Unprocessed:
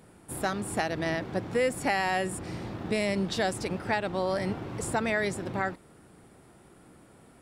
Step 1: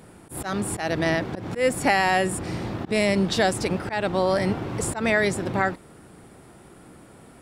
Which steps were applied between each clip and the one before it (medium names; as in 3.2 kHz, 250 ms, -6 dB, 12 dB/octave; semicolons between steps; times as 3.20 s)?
slow attack 118 ms; trim +7 dB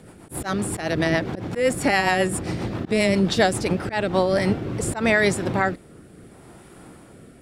rotary cabinet horn 7.5 Hz, later 0.7 Hz, at 3.77 s; trim +4 dB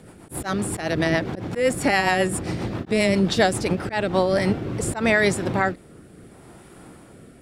endings held to a fixed fall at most 320 dB/s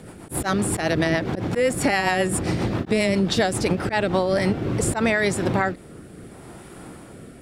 compression 4:1, threshold -22 dBFS, peak gain reduction 8 dB; trim +4.5 dB